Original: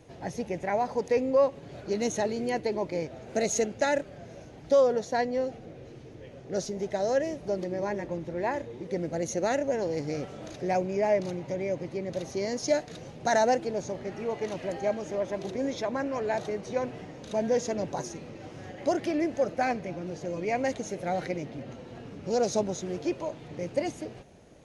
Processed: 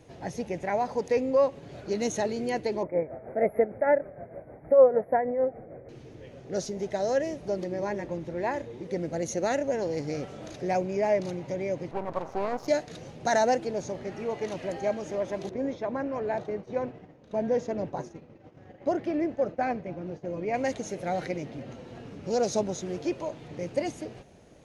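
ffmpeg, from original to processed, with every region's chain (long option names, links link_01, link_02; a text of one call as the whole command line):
ffmpeg -i in.wav -filter_complex "[0:a]asettb=1/sr,asplit=3[link_01][link_02][link_03];[link_01]atrim=end=2.834[link_04];[link_02]atrim=start=2.83:end=5.89,asetpts=PTS-STARTPTS,afade=type=in:duration=0.004:curve=qsin,afade=type=out:start_time=3.056:duration=0.004:curve=qsin,equalizer=frequency=600:width_type=o:width=0.88:gain=8,tremolo=f=6.5:d=0.59,asuperstop=centerf=5300:order=20:qfactor=0.61[link_05];[link_03]atrim=start=5.886[link_06];[link_04][link_05]acrossfade=duration=0.004:curve1=hsin:curve2=qsin[link_07];[link_07][link_06]acrossfade=duration=0.004:curve1=qsin:curve2=hsin,asettb=1/sr,asplit=3[link_08][link_09][link_10];[link_08]atrim=end=11.914[link_11];[link_09]atrim=start=11.91:end=12.68,asetpts=PTS-STARTPTS,afade=type=in:duration=0.004:curve=qsin,afade=type=out:start_time=0.766:duration=0.004:curve=qsin,lowpass=frequency=1300:poles=1,aeval=exprs='max(val(0),0)':channel_layout=same,equalizer=frequency=910:width=0.75:gain=10.5[link_12];[link_10]atrim=start=12.676[link_13];[link_11][link_12]acrossfade=duration=0.004:curve1=hsin:curve2=qsin[link_14];[link_14][link_13]acrossfade=duration=0.004:curve1=qsin:curve2=hsin,asettb=1/sr,asplit=3[link_15][link_16][link_17];[link_15]atrim=end=15.494[link_18];[link_16]atrim=start=15.49:end=20.54,asetpts=PTS-STARTPTS,afade=type=in:duration=0.004:curve=qsin,afade=type=out:start_time=5.046:duration=0.004:curve=qsin,lowpass=frequency=1500:poles=1,agate=range=-33dB:threshold=-37dB:ratio=3:release=100:detection=peak[link_19];[link_17]atrim=start=20.536[link_20];[link_18][link_19]acrossfade=duration=0.004:curve1=hsin:curve2=qsin[link_21];[link_21][link_20]acrossfade=duration=0.004:curve1=qsin:curve2=hsin" out.wav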